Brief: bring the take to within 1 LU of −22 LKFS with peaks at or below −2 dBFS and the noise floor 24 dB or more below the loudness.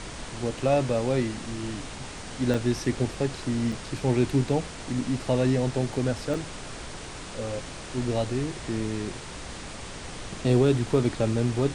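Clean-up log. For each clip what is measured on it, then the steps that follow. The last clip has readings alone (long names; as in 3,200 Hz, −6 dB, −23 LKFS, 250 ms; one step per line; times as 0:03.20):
number of dropouts 3; longest dropout 4.2 ms; background noise floor −39 dBFS; target noise floor −52 dBFS; integrated loudness −27.5 LKFS; sample peak −10.5 dBFS; target loudness −22.0 LKFS
→ repair the gap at 0:02.54/0:03.72/0:06.34, 4.2 ms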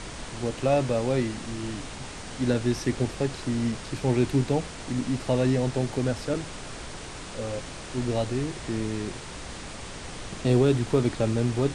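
number of dropouts 0; background noise floor −39 dBFS; target noise floor −52 dBFS
→ noise reduction from a noise print 13 dB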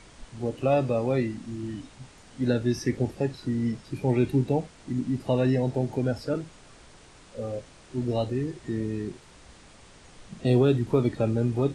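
background noise floor −52 dBFS; integrated loudness −27.5 LKFS; sample peak −10.5 dBFS; target loudness −22.0 LKFS
→ level +5.5 dB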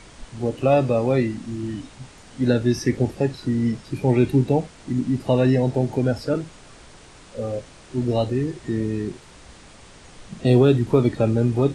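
integrated loudness −22.0 LKFS; sample peak −5.0 dBFS; background noise floor −47 dBFS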